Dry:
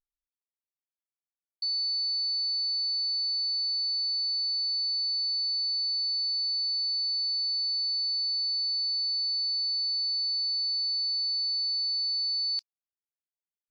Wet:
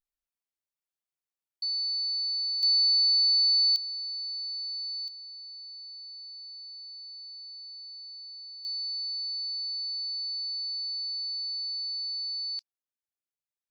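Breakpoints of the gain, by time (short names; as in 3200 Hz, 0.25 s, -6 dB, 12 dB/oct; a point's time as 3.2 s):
-1 dB
from 2.63 s +6.5 dB
from 3.76 s -6 dB
from 5.08 s -15 dB
from 8.65 s -4.5 dB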